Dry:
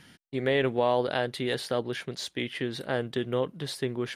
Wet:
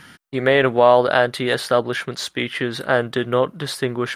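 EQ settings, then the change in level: dynamic bell 620 Hz, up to +5 dB, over -41 dBFS, Q 3.2; peaking EQ 1.3 kHz +9.5 dB 0.93 oct; treble shelf 9.5 kHz +4.5 dB; +7.0 dB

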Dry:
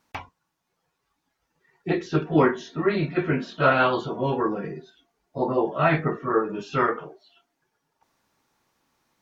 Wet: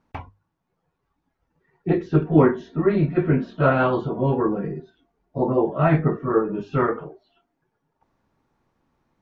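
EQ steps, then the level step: tilt EQ -2.5 dB/octave; treble shelf 3.3 kHz -8.5 dB; hum notches 50/100 Hz; 0.0 dB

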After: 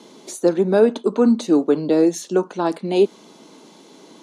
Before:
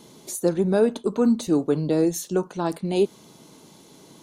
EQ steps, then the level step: high-pass 210 Hz 24 dB/octave; distance through air 65 m; +5.5 dB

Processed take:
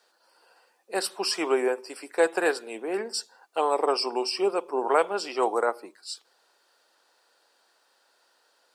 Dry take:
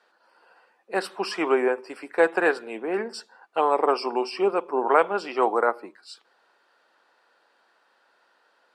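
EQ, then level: tone controls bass -9 dB, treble +12 dB; peaking EQ 1.5 kHz -5 dB 2.2 oct; 0.0 dB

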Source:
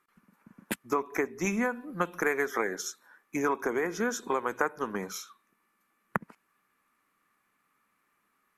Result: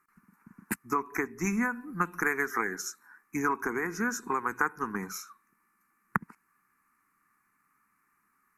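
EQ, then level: static phaser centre 1.4 kHz, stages 4; +3.0 dB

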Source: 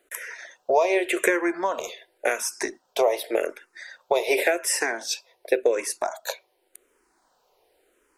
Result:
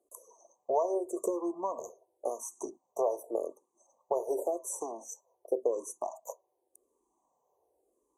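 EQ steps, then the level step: high-pass 56 Hz; brick-wall FIR band-stop 1.2–5.8 kHz; treble shelf 8.8 kHz -8 dB; -8.5 dB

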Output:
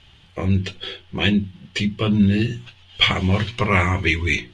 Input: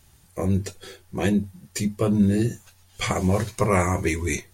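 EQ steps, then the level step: hum notches 60/120/180/240/300/360 Hz; dynamic bell 550 Hz, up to -8 dB, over -37 dBFS, Q 0.78; resonant low-pass 3.1 kHz, resonance Q 5; +5.0 dB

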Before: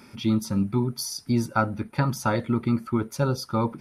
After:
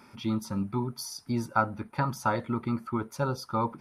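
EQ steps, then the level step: peaking EQ 1 kHz +8 dB 1.3 oct; -7.0 dB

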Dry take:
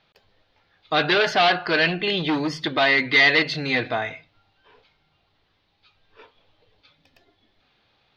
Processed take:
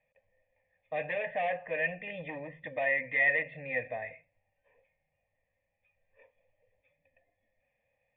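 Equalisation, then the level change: cascade formant filter e; bass shelf 140 Hz +5 dB; static phaser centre 1.4 kHz, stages 6; +3.0 dB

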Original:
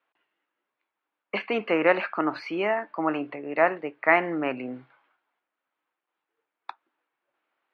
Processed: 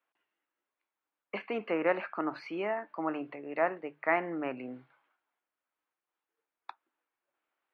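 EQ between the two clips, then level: hum notches 50/100/150 Hz; dynamic bell 4.3 kHz, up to -7 dB, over -40 dBFS, Q 0.7; -7.0 dB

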